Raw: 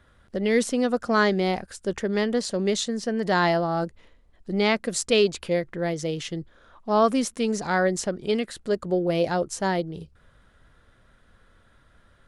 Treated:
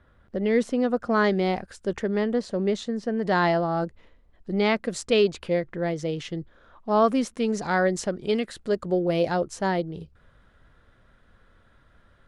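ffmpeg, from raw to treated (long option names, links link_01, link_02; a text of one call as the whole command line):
ffmpeg -i in.wav -af "asetnsamples=nb_out_samples=441:pad=0,asendcmd='1.24 lowpass f 3400;2.09 lowpass f 1400;3.27 lowpass f 3000;7.57 lowpass f 6000;9.37 lowpass f 3700',lowpass=frequency=1600:poles=1" out.wav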